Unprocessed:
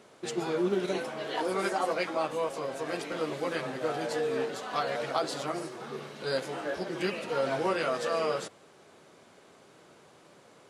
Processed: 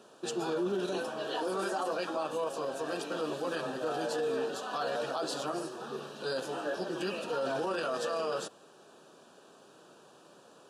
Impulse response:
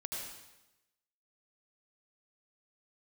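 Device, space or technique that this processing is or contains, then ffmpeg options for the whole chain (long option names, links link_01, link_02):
PA system with an anti-feedback notch: -af "highpass=170,asuperstop=centerf=2100:order=4:qfactor=3,alimiter=level_in=1dB:limit=-24dB:level=0:latency=1:release=15,volume=-1dB"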